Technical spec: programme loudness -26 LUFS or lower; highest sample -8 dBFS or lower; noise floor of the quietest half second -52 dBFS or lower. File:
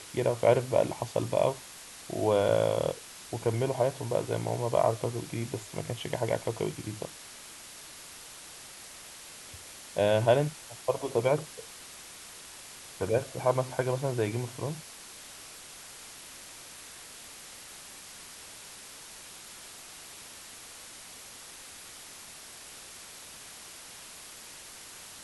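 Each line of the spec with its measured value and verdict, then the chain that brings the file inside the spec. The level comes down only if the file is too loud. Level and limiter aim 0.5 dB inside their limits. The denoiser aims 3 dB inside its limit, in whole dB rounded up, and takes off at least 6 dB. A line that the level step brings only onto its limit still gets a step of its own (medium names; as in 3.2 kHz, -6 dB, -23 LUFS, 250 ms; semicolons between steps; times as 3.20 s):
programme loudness -30.0 LUFS: pass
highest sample -10.5 dBFS: pass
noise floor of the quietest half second -47 dBFS: fail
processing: noise reduction 8 dB, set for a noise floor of -47 dBFS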